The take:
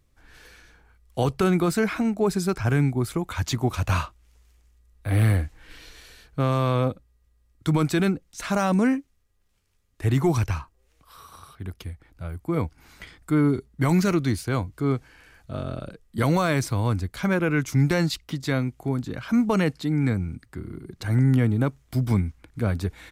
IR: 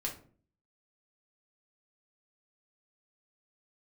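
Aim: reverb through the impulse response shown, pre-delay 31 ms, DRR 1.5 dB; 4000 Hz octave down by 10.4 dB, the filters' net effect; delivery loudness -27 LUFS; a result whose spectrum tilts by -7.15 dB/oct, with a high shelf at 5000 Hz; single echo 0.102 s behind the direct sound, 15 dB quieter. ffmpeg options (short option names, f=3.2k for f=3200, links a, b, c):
-filter_complex "[0:a]equalizer=f=4k:t=o:g=-9,highshelf=f=5k:g=-9,aecho=1:1:102:0.178,asplit=2[a][b];[1:a]atrim=start_sample=2205,adelay=31[c];[b][c]afir=irnorm=-1:irlink=0,volume=-3dB[d];[a][d]amix=inputs=2:normalize=0,volume=-5.5dB"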